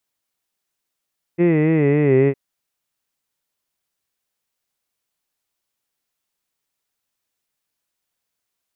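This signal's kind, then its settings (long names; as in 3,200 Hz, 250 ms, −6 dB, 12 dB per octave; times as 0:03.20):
vowel by formant synthesis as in hid, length 0.96 s, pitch 169 Hz, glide −4.5 semitones, vibrato 3.6 Hz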